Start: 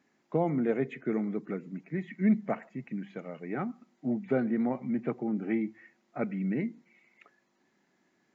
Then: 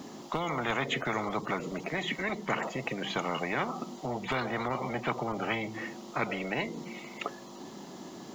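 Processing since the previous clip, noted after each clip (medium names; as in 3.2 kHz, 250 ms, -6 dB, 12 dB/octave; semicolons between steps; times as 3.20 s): high-order bell 1.9 kHz -12.5 dB 1 oct; in parallel at -2 dB: compression, threshold -37 dBFS, peak gain reduction 16 dB; on the sum: spectrum-flattening compressor 10:1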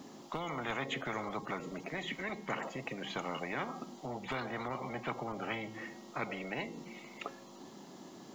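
feedback comb 270 Hz, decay 0.85 s, mix 60%; trim +1 dB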